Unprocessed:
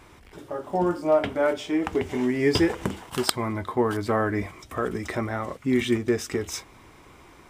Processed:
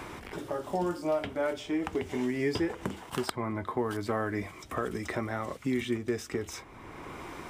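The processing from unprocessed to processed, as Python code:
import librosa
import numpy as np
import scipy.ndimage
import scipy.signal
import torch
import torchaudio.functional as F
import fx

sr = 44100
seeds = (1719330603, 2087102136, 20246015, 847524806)

y = fx.band_squash(x, sr, depth_pct=70)
y = y * 10.0 ** (-7.0 / 20.0)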